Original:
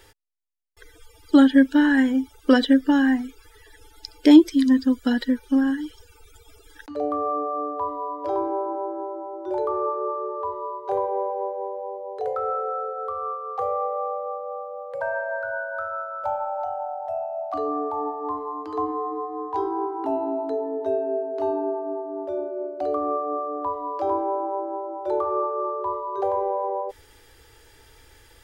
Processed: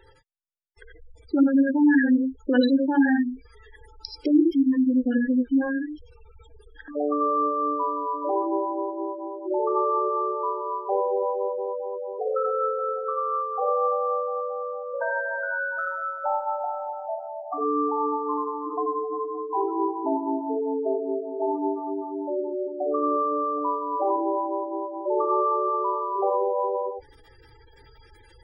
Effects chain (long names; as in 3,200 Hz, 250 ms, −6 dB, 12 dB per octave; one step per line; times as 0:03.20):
brickwall limiter −12 dBFS, peak gain reduction 9 dB
dynamic equaliser 200 Hz, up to −4 dB, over −31 dBFS, Q 1.1
reverb whose tail is shaped and stops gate 110 ms rising, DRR 1 dB
gate on every frequency bin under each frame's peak −15 dB strong